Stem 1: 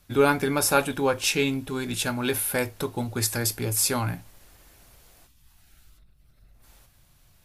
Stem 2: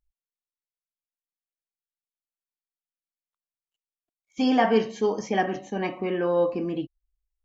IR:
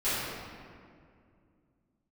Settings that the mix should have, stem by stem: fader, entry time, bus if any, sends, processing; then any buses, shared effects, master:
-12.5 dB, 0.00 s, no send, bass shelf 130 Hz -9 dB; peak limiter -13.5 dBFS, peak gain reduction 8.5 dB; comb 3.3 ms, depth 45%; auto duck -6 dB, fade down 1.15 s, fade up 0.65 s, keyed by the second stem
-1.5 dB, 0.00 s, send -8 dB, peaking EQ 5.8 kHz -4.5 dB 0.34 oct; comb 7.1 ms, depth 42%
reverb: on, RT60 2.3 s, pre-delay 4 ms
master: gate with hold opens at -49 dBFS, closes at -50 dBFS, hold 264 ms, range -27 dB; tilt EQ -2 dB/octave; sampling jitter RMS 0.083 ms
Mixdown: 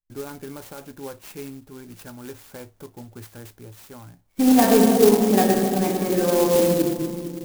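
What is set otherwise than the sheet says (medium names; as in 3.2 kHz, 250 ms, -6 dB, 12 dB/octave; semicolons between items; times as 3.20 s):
stem 1: missing comb 3.3 ms, depth 45%; stem 2: missing comb 7.1 ms, depth 42%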